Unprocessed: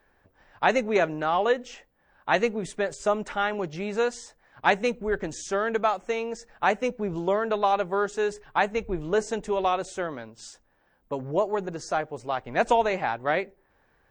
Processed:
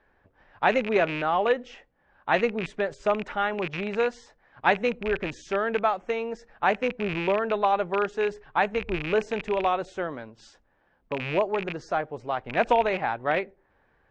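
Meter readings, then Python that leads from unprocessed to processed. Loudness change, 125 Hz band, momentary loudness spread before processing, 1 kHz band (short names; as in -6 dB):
0.0 dB, +0.5 dB, 9 LU, 0.0 dB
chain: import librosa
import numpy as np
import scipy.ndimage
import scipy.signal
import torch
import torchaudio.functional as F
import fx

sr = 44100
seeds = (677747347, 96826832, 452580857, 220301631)

y = fx.rattle_buzz(x, sr, strikes_db=-37.0, level_db=-20.0)
y = scipy.signal.sosfilt(scipy.signal.butter(2, 3400.0, 'lowpass', fs=sr, output='sos'), y)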